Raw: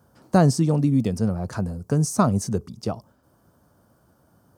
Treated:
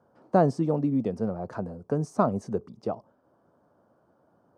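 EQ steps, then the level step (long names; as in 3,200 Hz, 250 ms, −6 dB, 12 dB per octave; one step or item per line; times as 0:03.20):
resonant band-pass 570 Hz, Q 0.8
0.0 dB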